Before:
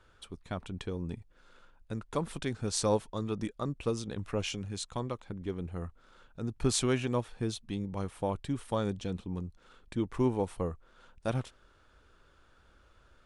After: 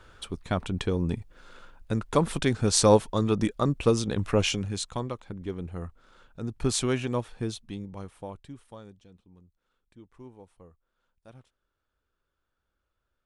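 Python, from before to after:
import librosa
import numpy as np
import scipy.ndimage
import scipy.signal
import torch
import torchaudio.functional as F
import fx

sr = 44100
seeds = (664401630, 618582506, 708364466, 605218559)

y = fx.gain(x, sr, db=fx.line((4.44, 9.5), (5.14, 2.0), (7.43, 2.0), (8.45, -9.0), (9.08, -19.0)))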